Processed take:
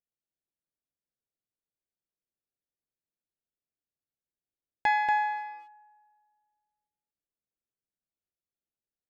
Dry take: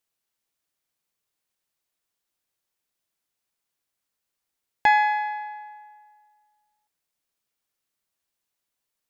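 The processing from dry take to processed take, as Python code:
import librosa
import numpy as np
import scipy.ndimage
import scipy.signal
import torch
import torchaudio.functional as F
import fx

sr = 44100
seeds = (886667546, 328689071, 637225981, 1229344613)

p1 = fx.wiener(x, sr, points=41)
p2 = p1 + fx.echo_single(p1, sr, ms=235, db=-4.0, dry=0)
y = p2 * 10.0 ** (-7.0 / 20.0)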